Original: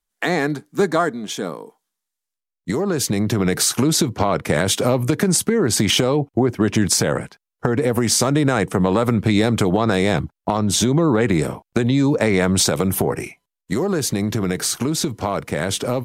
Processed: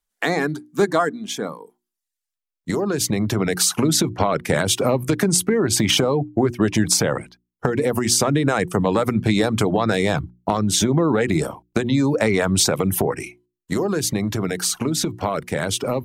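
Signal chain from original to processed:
reverb reduction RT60 0.58 s
mains-hum notches 60/120/180/240/300/360 Hz

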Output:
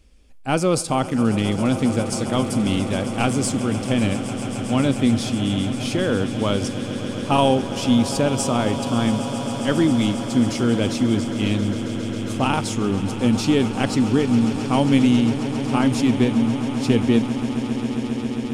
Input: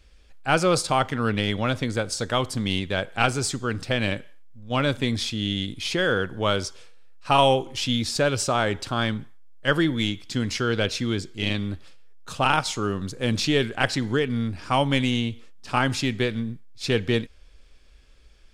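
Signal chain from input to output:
graphic EQ with 15 bands 100 Hz +3 dB, 250 Hz +10 dB, 1,600 Hz −7 dB, 4,000 Hz −5 dB, 10,000 Hz +5 dB
on a send: echo that builds up and dies away 135 ms, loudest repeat 8, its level −16 dB

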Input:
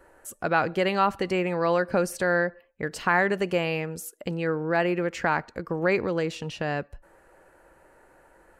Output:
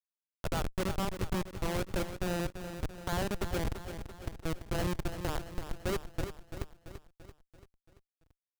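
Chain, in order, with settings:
comparator with hysteresis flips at −19.5 dBFS
repeating echo 338 ms, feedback 54%, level −9.5 dB
level −3.5 dB

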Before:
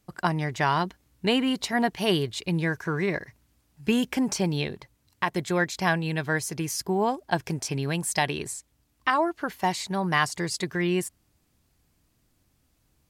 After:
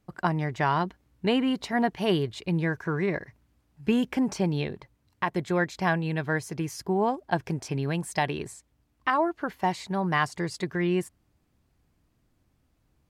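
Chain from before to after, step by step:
high-shelf EQ 3,300 Hz −11.5 dB

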